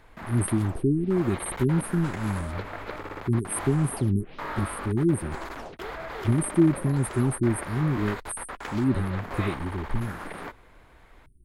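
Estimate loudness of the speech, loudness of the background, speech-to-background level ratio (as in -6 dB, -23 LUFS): -27.0 LUFS, -37.5 LUFS, 10.5 dB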